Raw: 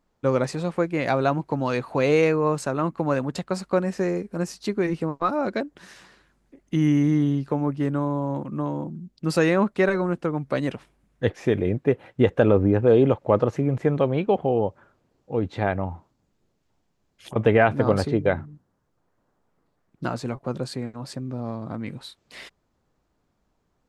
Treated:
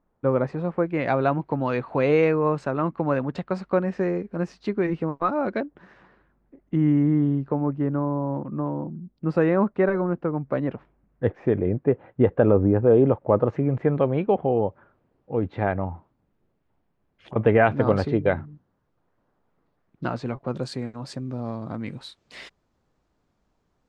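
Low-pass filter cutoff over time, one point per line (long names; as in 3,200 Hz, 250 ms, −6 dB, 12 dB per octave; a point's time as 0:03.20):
1,500 Hz
from 0:00.86 2,600 Hz
from 0:05.65 1,400 Hz
from 0:13.47 2,200 Hz
from 0:17.63 3,700 Hz
from 0:20.56 7,600 Hz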